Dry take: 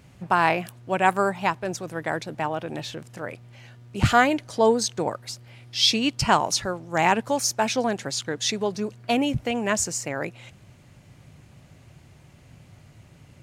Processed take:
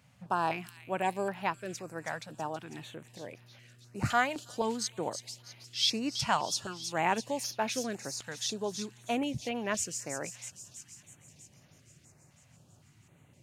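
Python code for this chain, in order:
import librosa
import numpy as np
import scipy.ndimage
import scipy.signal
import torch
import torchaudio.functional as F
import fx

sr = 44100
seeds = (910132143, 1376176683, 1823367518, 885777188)

p1 = scipy.signal.sosfilt(scipy.signal.butter(2, 88.0, 'highpass', fs=sr, output='sos'), x)
p2 = fx.low_shelf(p1, sr, hz=150.0, db=-3.5)
p3 = p2 + fx.echo_wet_highpass(p2, sr, ms=324, feedback_pct=66, hz=4400.0, wet_db=-6, dry=0)
p4 = fx.filter_held_notch(p3, sr, hz=3.9, low_hz=360.0, high_hz=7900.0)
y = F.gain(torch.from_numpy(p4), -8.0).numpy()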